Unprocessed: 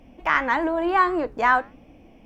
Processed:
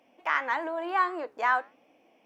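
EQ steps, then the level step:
high-pass filter 480 Hz 12 dB per octave
−6.0 dB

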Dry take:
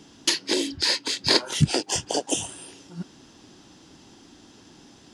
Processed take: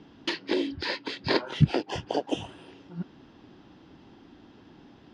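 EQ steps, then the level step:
high-frequency loss of the air 340 metres
0.0 dB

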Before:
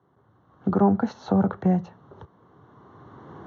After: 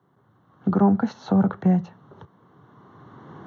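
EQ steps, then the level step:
high-pass filter 130 Hz 12 dB per octave
bass and treble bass +13 dB, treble −6 dB
spectral tilt +2.5 dB per octave
0.0 dB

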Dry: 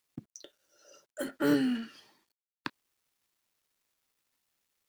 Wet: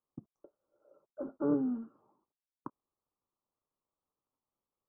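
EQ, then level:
elliptic low-pass filter 1,200 Hz, stop band 40 dB
notch filter 690 Hz, Q 20
−3.0 dB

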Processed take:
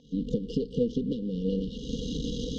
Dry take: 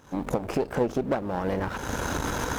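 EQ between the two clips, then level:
linear-phase brick-wall band-stop 510–2,800 Hz
low-pass filter 4,500 Hz 24 dB per octave
phaser with its sweep stopped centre 360 Hz, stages 6
+3.5 dB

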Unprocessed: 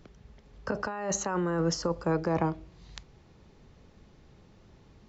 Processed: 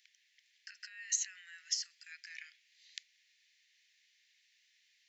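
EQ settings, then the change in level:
Butterworth high-pass 1,800 Hz 72 dB per octave
0.0 dB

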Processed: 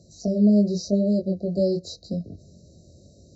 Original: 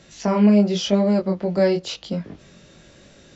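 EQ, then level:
high-pass filter 53 Hz
linear-phase brick-wall band-stop 730–3,800 Hz
parametric band 80 Hz +13.5 dB 1.3 octaves
−5.0 dB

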